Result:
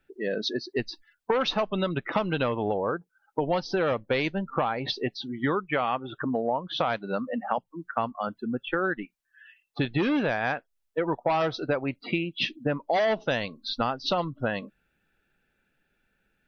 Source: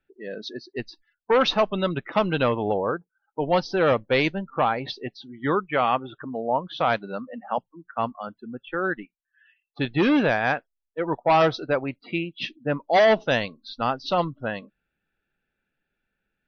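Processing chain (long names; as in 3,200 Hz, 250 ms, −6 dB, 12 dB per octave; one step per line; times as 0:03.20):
downward compressor 6 to 1, threshold −31 dBFS, peak gain reduction 14.5 dB
level +7 dB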